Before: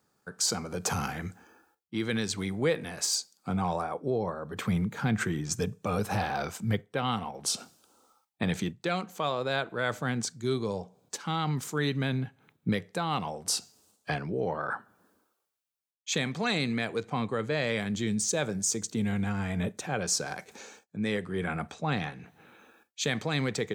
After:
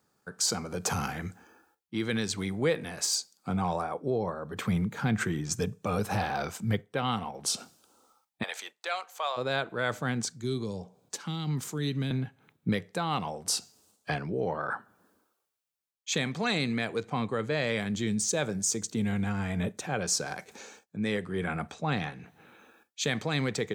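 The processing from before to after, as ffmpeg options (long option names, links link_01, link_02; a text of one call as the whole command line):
ffmpeg -i in.wav -filter_complex "[0:a]asplit=3[link_01][link_02][link_03];[link_01]afade=type=out:start_time=8.42:duration=0.02[link_04];[link_02]highpass=frequency=610:width=0.5412,highpass=frequency=610:width=1.3066,afade=type=in:start_time=8.42:duration=0.02,afade=type=out:start_time=9.36:duration=0.02[link_05];[link_03]afade=type=in:start_time=9.36:duration=0.02[link_06];[link_04][link_05][link_06]amix=inputs=3:normalize=0,asettb=1/sr,asplit=3[link_07][link_08][link_09];[link_07]atrim=end=10.304[link_10];[link_08]atrim=start=10.3:end=12.11,asetpts=PTS-STARTPTS,afade=type=in:duration=0.004:curve=qsin,afade=type=out:start_time=1.806:duration=0.004:curve=qsin,acrossover=split=380|3000[link_11][link_12][link_13];[link_12]acompressor=threshold=-43dB:ratio=6:attack=3.2:release=140:knee=2.83:detection=peak[link_14];[link_11][link_14][link_13]amix=inputs=3:normalize=0[link_15];[link_09]atrim=start=12.106[link_16];[link_10][link_15]acrossfade=duration=0.004:curve1=hsin:curve2=qsin[link_17];[link_17][link_16]acrossfade=duration=0.004:curve1=qsin:curve2=hsin" out.wav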